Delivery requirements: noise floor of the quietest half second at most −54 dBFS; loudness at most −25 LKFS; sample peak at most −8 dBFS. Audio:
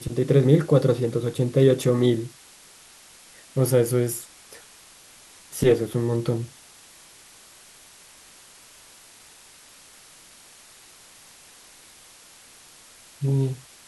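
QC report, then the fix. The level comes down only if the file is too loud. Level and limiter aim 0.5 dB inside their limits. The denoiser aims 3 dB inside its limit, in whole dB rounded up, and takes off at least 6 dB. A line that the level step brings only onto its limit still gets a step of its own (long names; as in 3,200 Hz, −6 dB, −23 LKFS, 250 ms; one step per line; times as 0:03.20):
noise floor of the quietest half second −50 dBFS: out of spec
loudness −22.0 LKFS: out of spec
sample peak −5.5 dBFS: out of spec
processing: broadband denoise 6 dB, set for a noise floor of −50 dBFS
level −3.5 dB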